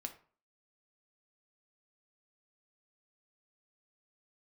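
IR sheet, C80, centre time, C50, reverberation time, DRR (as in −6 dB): 17.5 dB, 9 ms, 12.5 dB, 0.45 s, 5.5 dB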